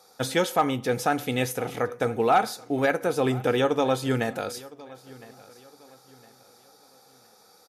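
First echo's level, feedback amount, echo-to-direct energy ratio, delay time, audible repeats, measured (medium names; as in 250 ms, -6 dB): -21.0 dB, 36%, -20.5 dB, 1011 ms, 2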